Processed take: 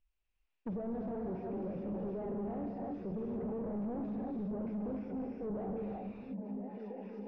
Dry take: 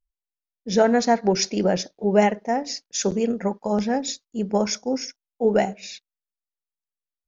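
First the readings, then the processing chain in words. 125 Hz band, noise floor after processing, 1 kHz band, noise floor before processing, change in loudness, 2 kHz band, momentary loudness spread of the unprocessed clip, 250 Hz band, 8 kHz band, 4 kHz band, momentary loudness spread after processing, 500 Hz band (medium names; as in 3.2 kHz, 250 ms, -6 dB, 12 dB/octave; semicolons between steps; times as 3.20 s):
-11.5 dB, -82 dBFS, -21.0 dB, under -85 dBFS, -17.0 dB, under -25 dB, 10 LU, -12.5 dB, no reading, under -40 dB, 5 LU, -18.0 dB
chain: recorder AGC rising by 7.1 dB/s; low-pass 4.9 kHz; peaking EQ 2.6 kHz +11.5 dB 0.48 oct; reverse; compression 6:1, threshold -26 dBFS, peak gain reduction 14 dB; reverse; peak limiter -25.5 dBFS, peak gain reduction 9 dB; on a send: repeats whose band climbs or falls 679 ms, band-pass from 170 Hz, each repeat 0.7 oct, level -9 dB; on the sum: gated-style reverb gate 380 ms rising, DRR -1 dB; hard clipper -38.5 dBFS, distortion -5 dB; low-pass that closes with the level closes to 600 Hz, closed at -39.5 dBFS; treble shelf 3.6 kHz -10.5 dB; trim +3.5 dB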